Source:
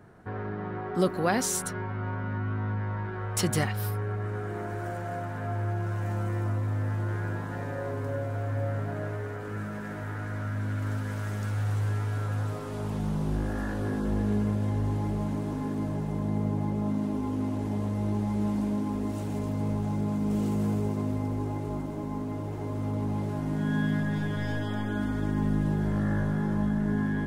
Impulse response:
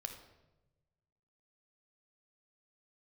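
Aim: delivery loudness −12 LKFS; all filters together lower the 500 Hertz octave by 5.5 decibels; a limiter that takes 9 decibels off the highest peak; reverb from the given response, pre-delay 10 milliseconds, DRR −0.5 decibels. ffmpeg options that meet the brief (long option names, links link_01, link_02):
-filter_complex "[0:a]equalizer=frequency=500:width_type=o:gain=-7.5,alimiter=limit=-23dB:level=0:latency=1,asplit=2[link_01][link_02];[1:a]atrim=start_sample=2205,adelay=10[link_03];[link_02][link_03]afir=irnorm=-1:irlink=0,volume=3dB[link_04];[link_01][link_04]amix=inputs=2:normalize=0,volume=13dB"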